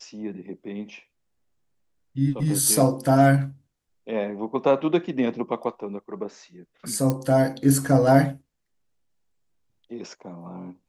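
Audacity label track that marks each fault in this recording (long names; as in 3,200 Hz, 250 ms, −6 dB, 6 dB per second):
7.100000	7.100000	click −11 dBFS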